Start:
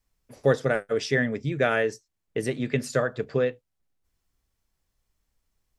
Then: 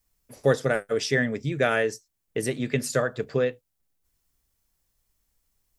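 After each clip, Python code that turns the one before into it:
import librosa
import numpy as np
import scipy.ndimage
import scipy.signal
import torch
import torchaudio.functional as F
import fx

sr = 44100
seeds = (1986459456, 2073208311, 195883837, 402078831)

y = fx.high_shelf(x, sr, hz=7400.0, db=12.0)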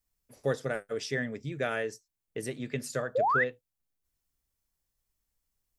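y = fx.spec_paint(x, sr, seeds[0], shape='rise', start_s=3.15, length_s=0.29, low_hz=470.0, high_hz=2100.0, level_db=-17.0)
y = y * 10.0 ** (-8.5 / 20.0)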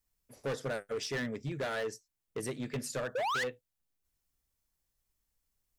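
y = np.clip(10.0 ** (31.0 / 20.0) * x, -1.0, 1.0) / 10.0 ** (31.0 / 20.0)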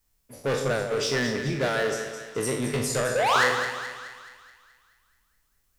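y = fx.spec_trails(x, sr, decay_s=0.61)
y = fx.echo_split(y, sr, split_hz=1100.0, low_ms=146, high_ms=213, feedback_pct=52, wet_db=-8.5)
y = y * 10.0 ** (7.5 / 20.0)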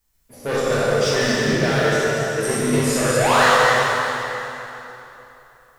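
y = fx.reverse_delay(x, sr, ms=132, wet_db=-2)
y = fx.rev_plate(y, sr, seeds[1], rt60_s=3.2, hf_ratio=0.75, predelay_ms=0, drr_db=-4.5)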